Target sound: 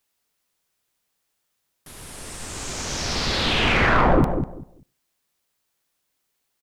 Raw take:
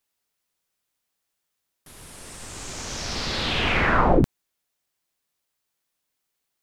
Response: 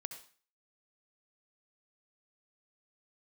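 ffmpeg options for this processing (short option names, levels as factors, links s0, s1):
-filter_complex "[0:a]asoftclip=type=tanh:threshold=0.168,asplit=2[s0][s1];[s1]adelay=196,lowpass=f=940:p=1,volume=0.473,asplit=2[s2][s3];[s3]adelay=196,lowpass=f=940:p=1,volume=0.21,asplit=2[s4][s5];[s5]adelay=196,lowpass=f=940:p=1,volume=0.21[s6];[s0][s2][s4][s6]amix=inputs=4:normalize=0,asplit=2[s7][s8];[1:a]atrim=start_sample=2205[s9];[s8][s9]afir=irnorm=-1:irlink=0,volume=0.224[s10];[s7][s10]amix=inputs=2:normalize=0,volume=1.41"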